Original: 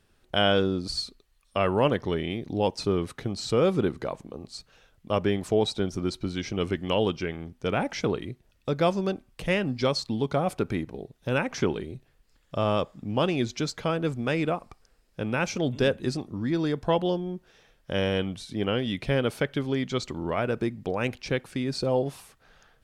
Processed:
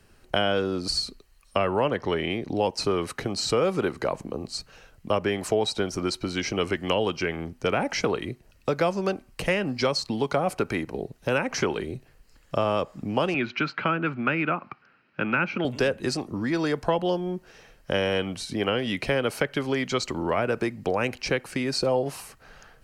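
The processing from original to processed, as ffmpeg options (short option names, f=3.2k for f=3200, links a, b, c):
-filter_complex "[0:a]asettb=1/sr,asplit=3[a][b][c];[a]atrim=end=1.654[d];[b]atrim=start=1.65:end=2.57,asetpts=PTS-STARTPTS,afade=t=in:d=0.004:c=qsin,afade=t=out:st=0.916:d=0.004:c=qsin,highshelf=f=7.7k:g=-8[e];[c]atrim=start=2.566[f];[d][e]acrossfade=d=0.004:c1=hsin:c2=qsin[g];[g][f]acrossfade=d=0.004:c1=qsin:c2=hsin,asettb=1/sr,asplit=3[h][i][j];[h]atrim=end=13.344[k];[i]atrim=start=13.34:end=15.65,asetpts=PTS-STARTPTS,afade=t=in:d=0.004:c=qsin,afade=t=out:st=2.306:d=0.004:c=qsin,highpass=f=130:w=0.5412,highpass=f=130:w=1.3066,equalizer=f=470:t=q:w=4:g=-9,equalizer=f=690:t=q:w=4:g=-5,equalizer=f=1.4k:t=q:w=4:g=10,equalizer=f=2.5k:t=q:w=4:g=6,lowpass=f=3.3k:w=0.5412,lowpass=f=3.3k:w=1.3066[l];[j]atrim=start=15.646[m];[k][l]acrossfade=d=0.004:c1=hsin:c2=qsin[n];[n][m]acrossfade=d=0.004:c1=qsin:c2=hsin,bandreject=f=3.5k:w=6.3,acrossover=split=240|500[o][p][q];[o]acompressor=threshold=-44dB:ratio=4[r];[p]acompressor=threshold=-39dB:ratio=4[s];[q]acompressor=threshold=-32dB:ratio=4[t];[r][s][t]amix=inputs=3:normalize=0,volume=8dB"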